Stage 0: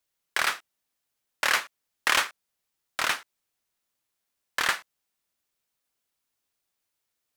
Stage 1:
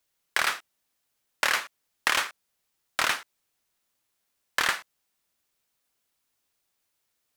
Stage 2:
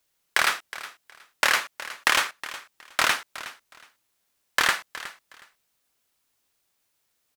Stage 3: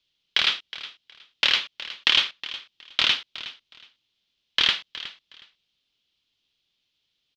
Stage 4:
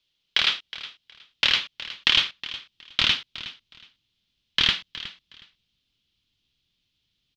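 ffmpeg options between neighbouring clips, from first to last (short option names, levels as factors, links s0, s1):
-af "acompressor=threshold=0.0631:ratio=6,volume=1.58"
-af "aecho=1:1:366|732:0.168|0.0336,volume=1.5"
-af "firequalizer=gain_entry='entry(170,0);entry(690,-10);entry(1700,-8);entry(3200,11);entry(8700,-25)':delay=0.05:min_phase=1"
-af "asubboost=boost=4:cutoff=250"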